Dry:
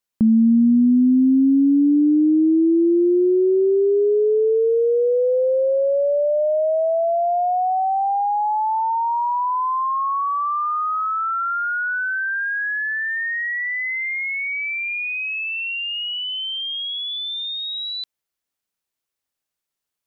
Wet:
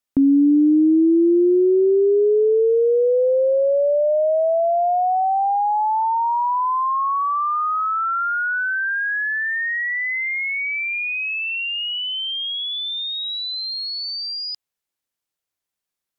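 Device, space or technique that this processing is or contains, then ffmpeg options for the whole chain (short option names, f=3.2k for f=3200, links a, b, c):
nightcore: -af "asetrate=54684,aresample=44100"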